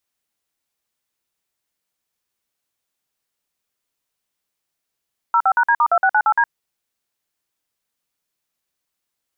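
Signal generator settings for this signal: DTMF "05#D*2698D", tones 64 ms, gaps 51 ms, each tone -14.5 dBFS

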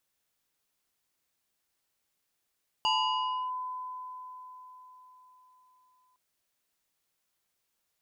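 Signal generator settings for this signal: FM tone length 3.31 s, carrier 1.01 kHz, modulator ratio 1.87, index 1.6, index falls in 0.66 s linear, decay 4.52 s, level -23 dB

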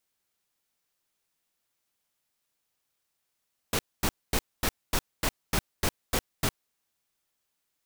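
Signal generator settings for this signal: noise bursts pink, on 0.06 s, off 0.24 s, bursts 10, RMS -25.5 dBFS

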